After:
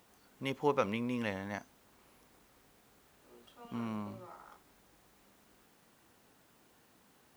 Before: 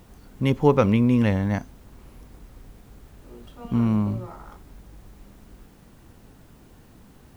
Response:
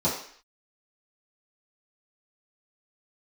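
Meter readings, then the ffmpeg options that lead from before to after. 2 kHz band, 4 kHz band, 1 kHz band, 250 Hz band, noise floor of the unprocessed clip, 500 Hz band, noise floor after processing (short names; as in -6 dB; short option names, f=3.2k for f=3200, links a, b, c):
-7.5 dB, n/a, -9.0 dB, -17.0 dB, -52 dBFS, -12.5 dB, -67 dBFS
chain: -af "highpass=f=720:p=1,volume=-7dB"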